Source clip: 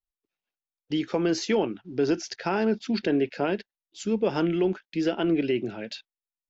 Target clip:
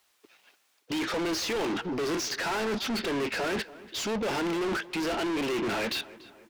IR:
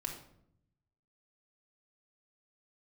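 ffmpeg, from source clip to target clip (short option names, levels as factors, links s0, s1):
-filter_complex "[0:a]highpass=57,areverse,acompressor=threshold=0.0251:ratio=6,areverse,asplit=2[s0][s1];[s1]highpass=f=720:p=1,volume=79.4,asoftclip=type=tanh:threshold=0.0668[s2];[s0][s2]amix=inputs=2:normalize=0,lowpass=f=4800:p=1,volume=0.501,asplit=2[s3][s4];[s4]adelay=288,lowpass=f=3300:p=1,volume=0.119,asplit=2[s5][s6];[s6]adelay=288,lowpass=f=3300:p=1,volume=0.49,asplit=2[s7][s8];[s8]adelay=288,lowpass=f=3300:p=1,volume=0.49,asplit=2[s9][s10];[s10]adelay=288,lowpass=f=3300:p=1,volume=0.49[s11];[s3][s5][s7][s9][s11]amix=inputs=5:normalize=0"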